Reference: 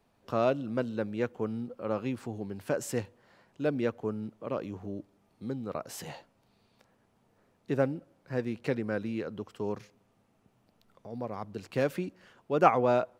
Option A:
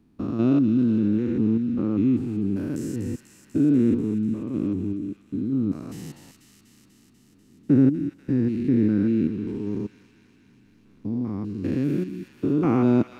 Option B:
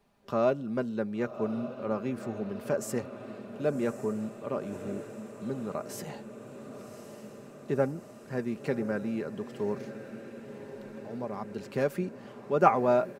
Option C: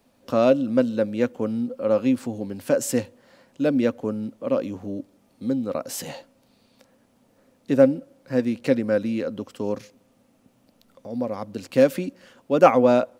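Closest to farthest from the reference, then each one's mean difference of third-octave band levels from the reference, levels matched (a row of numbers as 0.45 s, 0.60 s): C, B, A; 3.0 dB, 4.5 dB, 8.0 dB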